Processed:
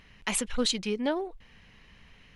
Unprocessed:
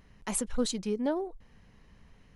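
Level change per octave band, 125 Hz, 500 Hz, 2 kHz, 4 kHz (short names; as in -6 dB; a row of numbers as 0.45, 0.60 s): 0.0, +1.0, +9.5, +9.0 dB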